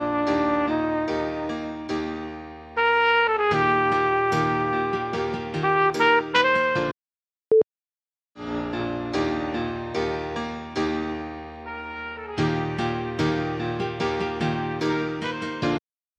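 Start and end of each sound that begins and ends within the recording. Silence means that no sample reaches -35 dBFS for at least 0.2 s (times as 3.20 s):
7.52–7.62 s
8.38–15.78 s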